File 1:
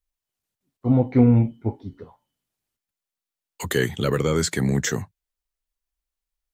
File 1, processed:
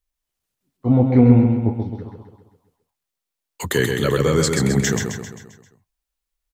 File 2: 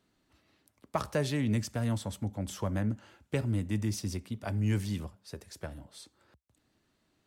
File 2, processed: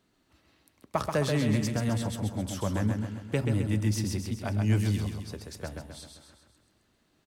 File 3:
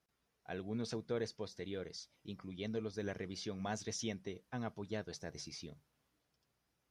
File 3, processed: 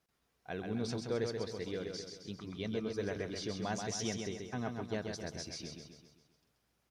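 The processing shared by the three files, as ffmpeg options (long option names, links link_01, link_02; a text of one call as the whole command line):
ffmpeg -i in.wav -af "aecho=1:1:132|264|396|528|660|792:0.562|0.287|0.146|0.0746|0.038|0.0194,volume=2.5dB" out.wav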